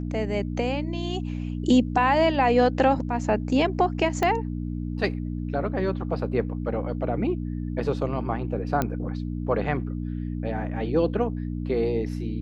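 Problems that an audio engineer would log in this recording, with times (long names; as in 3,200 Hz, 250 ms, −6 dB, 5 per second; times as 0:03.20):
mains hum 60 Hz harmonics 5 −30 dBFS
0:04.23: click −11 dBFS
0:08.82: click −11 dBFS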